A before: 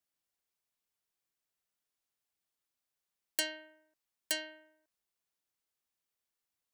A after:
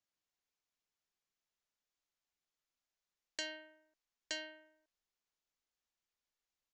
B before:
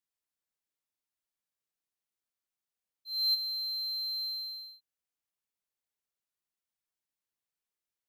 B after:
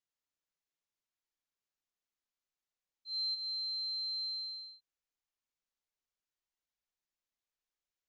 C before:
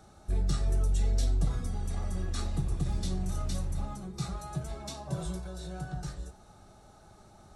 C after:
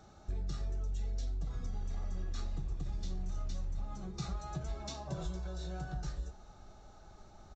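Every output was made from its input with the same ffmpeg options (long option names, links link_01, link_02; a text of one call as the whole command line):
ffmpeg -i in.wav -af "asubboost=boost=3:cutoff=59,acompressor=threshold=-31dB:ratio=10,aresample=16000,aresample=44100,volume=-2dB" out.wav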